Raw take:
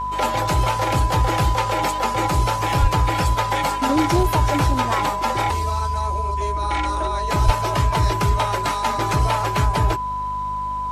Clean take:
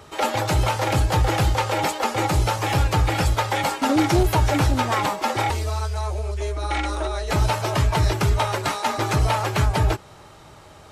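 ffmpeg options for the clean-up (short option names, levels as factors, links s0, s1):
-filter_complex "[0:a]bandreject=f=50.5:t=h:w=4,bandreject=f=101:t=h:w=4,bandreject=f=151.5:t=h:w=4,bandreject=f=202:t=h:w=4,bandreject=f=252.5:t=h:w=4,bandreject=f=1000:w=30,asplit=3[s0][s1][s2];[s0]afade=t=out:st=2.81:d=0.02[s3];[s1]highpass=f=140:w=0.5412,highpass=f=140:w=1.3066,afade=t=in:st=2.81:d=0.02,afade=t=out:st=2.93:d=0.02[s4];[s2]afade=t=in:st=2.93:d=0.02[s5];[s3][s4][s5]amix=inputs=3:normalize=0,asplit=3[s6][s7][s8];[s6]afade=t=out:st=7.45:d=0.02[s9];[s7]highpass=f=140:w=0.5412,highpass=f=140:w=1.3066,afade=t=in:st=7.45:d=0.02,afade=t=out:st=7.57:d=0.02[s10];[s8]afade=t=in:st=7.57:d=0.02[s11];[s9][s10][s11]amix=inputs=3:normalize=0"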